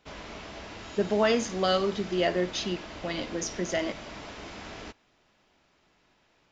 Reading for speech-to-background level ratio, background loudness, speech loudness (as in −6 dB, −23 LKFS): 13.0 dB, −42.0 LKFS, −29.0 LKFS